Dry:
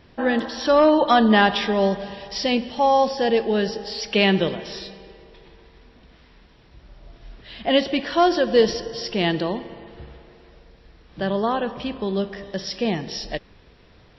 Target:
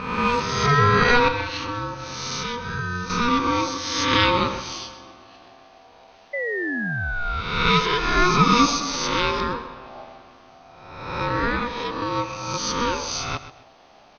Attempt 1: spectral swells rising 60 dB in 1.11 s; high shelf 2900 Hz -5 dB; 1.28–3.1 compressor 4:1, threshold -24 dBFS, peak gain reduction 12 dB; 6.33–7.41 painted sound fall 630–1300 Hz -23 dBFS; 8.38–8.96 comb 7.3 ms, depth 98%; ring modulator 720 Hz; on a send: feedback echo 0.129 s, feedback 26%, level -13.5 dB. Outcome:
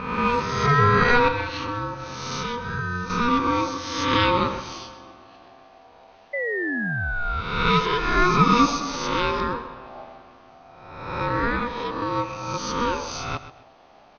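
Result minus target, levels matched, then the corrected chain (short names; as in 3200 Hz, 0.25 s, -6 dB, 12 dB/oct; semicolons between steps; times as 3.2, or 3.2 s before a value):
8000 Hz band -5.5 dB
spectral swells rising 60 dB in 1.11 s; high shelf 2900 Hz +3.5 dB; 1.28–3.1 compressor 4:1, threshold -24 dBFS, peak gain reduction 12 dB; 6.33–7.41 painted sound fall 630–1300 Hz -23 dBFS; 8.38–8.96 comb 7.3 ms, depth 98%; ring modulator 720 Hz; on a send: feedback echo 0.129 s, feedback 26%, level -13.5 dB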